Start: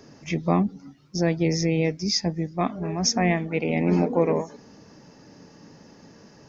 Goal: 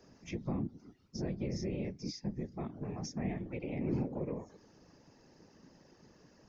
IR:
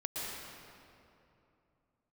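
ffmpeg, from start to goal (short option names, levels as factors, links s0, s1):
-filter_complex "[0:a]acrossover=split=360[s0][s1];[s1]acompressor=threshold=0.0224:ratio=6[s2];[s0][s2]amix=inputs=2:normalize=0,afftfilt=real='hypot(re,im)*cos(2*PI*random(0))':imag='hypot(re,im)*sin(2*PI*random(1))':win_size=512:overlap=0.75,volume=0.501"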